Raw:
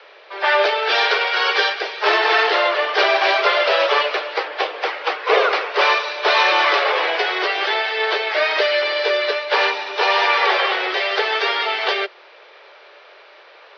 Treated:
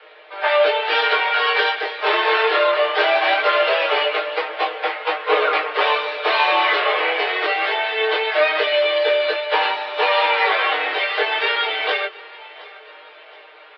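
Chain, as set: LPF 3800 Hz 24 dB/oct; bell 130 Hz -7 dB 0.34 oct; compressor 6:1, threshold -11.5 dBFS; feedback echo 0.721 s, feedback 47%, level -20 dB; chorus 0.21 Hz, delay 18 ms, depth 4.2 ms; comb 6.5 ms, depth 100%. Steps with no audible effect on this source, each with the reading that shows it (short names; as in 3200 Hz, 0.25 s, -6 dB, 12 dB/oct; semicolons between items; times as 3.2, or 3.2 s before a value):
bell 130 Hz: input band starts at 290 Hz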